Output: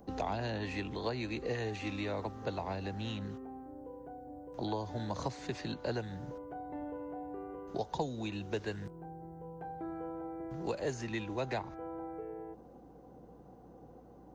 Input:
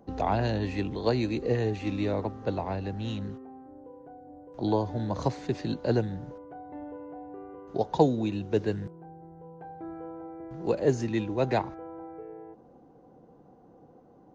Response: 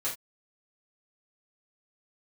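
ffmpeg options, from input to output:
-filter_complex "[0:a]acrossover=split=100|710|3300[link_01][link_02][link_03][link_04];[link_01]acompressor=threshold=-50dB:ratio=4[link_05];[link_02]acompressor=threshold=-39dB:ratio=4[link_06];[link_03]acompressor=threshold=-39dB:ratio=4[link_07];[link_04]acompressor=threshold=-55dB:ratio=4[link_08];[link_05][link_06][link_07][link_08]amix=inputs=4:normalize=0,crystalizer=i=1:c=0,aeval=exprs='val(0)+0.000708*(sin(2*PI*60*n/s)+sin(2*PI*2*60*n/s)/2+sin(2*PI*3*60*n/s)/3+sin(2*PI*4*60*n/s)/4+sin(2*PI*5*60*n/s)/5)':channel_layout=same"

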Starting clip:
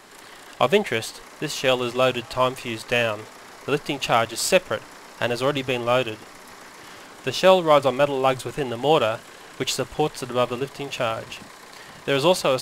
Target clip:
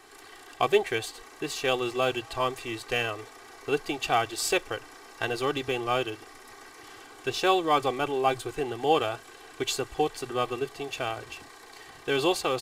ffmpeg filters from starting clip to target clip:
ffmpeg -i in.wav -af "aecho=1:1:2.6:0.75,volume=-7dB" out.wav

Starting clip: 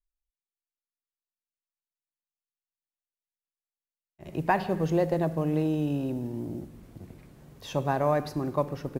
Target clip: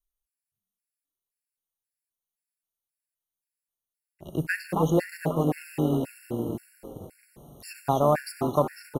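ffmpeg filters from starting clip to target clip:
ffmpeg -i in.wav -filter_complex "[0:a]equalizer=frequency=11000:width_type=o:width=0.47:gain=9,acrossover=split=6500[link_01][link_02];[link_02]acontrast=33[link_03];[link_01][link_03]amix=inputs=2:normalize=0,asettb=1/sr,asplit=3[link_04][link_05][link_06];[link_04]atrim=end=4.444[link_07];[link_05]atrim=start=4.44:end=6.17,asetpts=PTS-STARTPTS,afade=type=in:duration=0.004:curve=qsin,afade=type=out:start_time=1.726:duration=0.004:curve=qsin,aeval=exprs='sgn(val(0))*max(abs(val(0))-0.00251,0)':channel_layout=same[link_08];[link_06]atrim=start=6.166[link_09];[link_07][link_08]acrossfade=duration=0.004:curve1=hsin:curve2=qsin[link_10];[link_10][link_09]acrossfade=duration=0.004:curve1=qsin:curve2=hsin,asplit=7[link_11][link_12][link_13][link_14][link_15][link_16][link_17];[link_12]adelay=271,afreqshift=90,volume=-8.5dB[link_18];[link_13]adelay=542,afreqshift=180,volume=-14.7dB[link_19];[link_14]adelay=813,afreqshift=270,volume=-20.9dB[link_20];[link_15]adelay=1084,afreqshift=360,volume=-27.1dB[link_21];[link_16]adelay=1355,afreqshift=450,volume=-33.3dB[link_22];[link_17]adelay=1626,afreqshift=540,volume=-39.5dB[link_23];[link_11][link_18][link_19][link_20][link_21][link_22][link_23]amix=inputs=7:normalize=0,asplit=2[link_24][link_25];[link_25]aeval=exprs='sgn(val(0))*max(abs(val(0))-0.0119,0)':channel_layout=same,volume=-4dB[link_26];[link_24][link_26]amix=inputs=2:normalize=0,afftfilt=real='re*gt(sin(2*PI*1.9*pts/sr)*(1-2*mod(floor(b*sr/1024/1400),2)),0)':imag='im*gt(sin(2*PI*1.9*pts/sr)*(1-2*mod(floor(b*sr/1024/1400),2)),0)':win_size=1024:overlap=0.75" out.wav

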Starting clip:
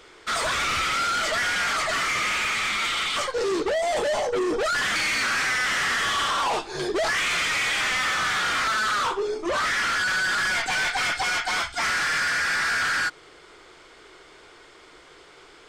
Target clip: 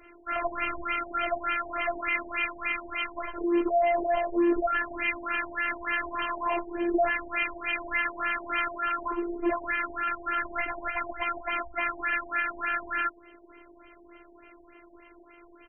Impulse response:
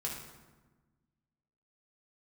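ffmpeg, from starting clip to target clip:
-af "aecho=1:1:3.3:0.64,afftfilt=real='hypot(re,im)*cos(PI*b)':imag='0':win_size=512:overlap=0.75,afftfilt=real='re*lt(b*sr/1024,910*pow(3200/910,0.5+0.5*sin(2*PI*3.4*pts/sr)))':imag='im*lt(b*sr/1024,910*pow(3200/910,0.5+0.5*sin(2*PI*3.4*pts/sr)))':win_size=1024:overlap=0.75"

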